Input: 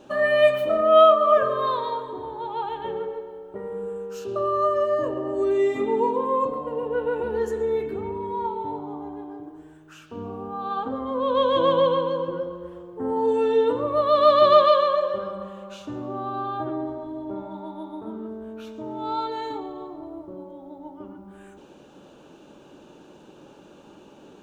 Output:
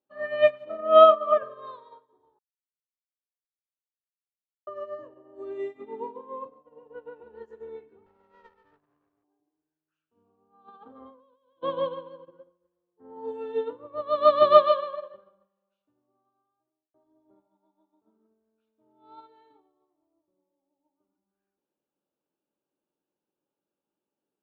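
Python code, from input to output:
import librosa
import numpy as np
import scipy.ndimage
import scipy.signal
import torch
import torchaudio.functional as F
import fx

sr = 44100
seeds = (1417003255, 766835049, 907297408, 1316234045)

y = fx.echo_throw(x, sr, start_s=6.85, length_s=0.43, ms=410, feedback_pct=50, wet_db=-11.0)
y = fx.lower_of_two(y, sr, delay_ms=0.72, at=(8.06, 9.24))
y = fx.over_compress(y, sr, threshold_db=-30.0, ratio=-1.0, at=(10.68, 11.63))
y = fx.edit(y, sr, fx.silence(start_s=2.39, length_s=2.28),
    fx.fade_out_span(start_s=15.38, length_s=1.56), tone=tone)
y = scipy.signal.sosfilt(scipy.signal.bessel(2, 3400.0, 'lowpass', norm='mag', fs=sr, output='sos'), y)
y = fx.low_shelf(y, sr, hz=130.0, db=-8.0)
y = fx.upward_expand(y, sr, threshold_db=-39.0, expansion=2.5)
y = y * librosa.db_to_amplitude(2.0)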